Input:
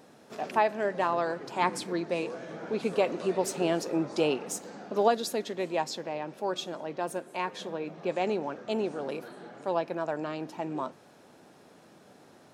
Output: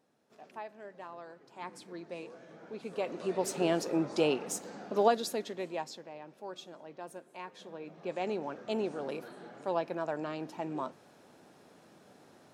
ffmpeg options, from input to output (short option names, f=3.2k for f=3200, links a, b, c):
-af "volume=7.5dB,afade=t=in:st=1.47:d=0.65:silence=0.473151,afade=t=in:st=2.86:d=0.78:silence=0.298538,afade=t=out:st=5.04:d=1.03:silence=0.298538,afade=t=in:st=7.57:d=1.12:silence=0.354813"